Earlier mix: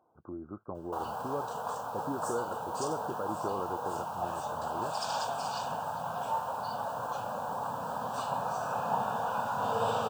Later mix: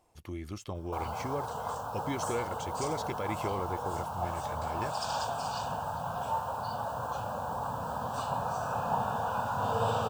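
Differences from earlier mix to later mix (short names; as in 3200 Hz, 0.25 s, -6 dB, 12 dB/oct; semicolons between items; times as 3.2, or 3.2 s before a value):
speech: remove brick-wall FIR low-pass 1600 Hz; master: remove HPF 170 Hz 12 dB/oct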